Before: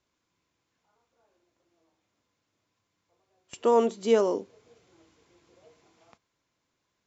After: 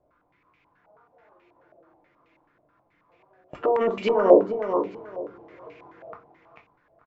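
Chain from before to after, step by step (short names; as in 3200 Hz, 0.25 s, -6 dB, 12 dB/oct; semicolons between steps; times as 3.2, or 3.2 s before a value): negative-ratio compressor -27 dBFS, ratio -1; feedback echo 0.441 s, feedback 22%, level -6.5 dB; on a send at -2 dB: reverb RT60 0.35 s, pre-delay 7 ms; on the sum: stepped low-pass 9.3 Hz 650–2400 Hz; gain +2.5 dB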